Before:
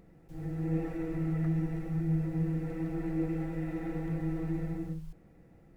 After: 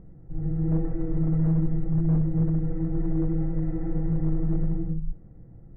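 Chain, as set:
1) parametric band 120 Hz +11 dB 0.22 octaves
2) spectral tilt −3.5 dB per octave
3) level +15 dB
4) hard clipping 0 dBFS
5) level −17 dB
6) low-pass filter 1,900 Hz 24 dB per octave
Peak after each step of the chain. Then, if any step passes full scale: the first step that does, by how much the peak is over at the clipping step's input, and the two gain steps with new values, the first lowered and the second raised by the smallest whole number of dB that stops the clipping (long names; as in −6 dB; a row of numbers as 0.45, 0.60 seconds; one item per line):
−19.5, −8.5, +6.5, 0.0, −17.0, −17.0 dBFS
step 3, 6.5 dB
step 3 +8 dB, step 5 −10 dB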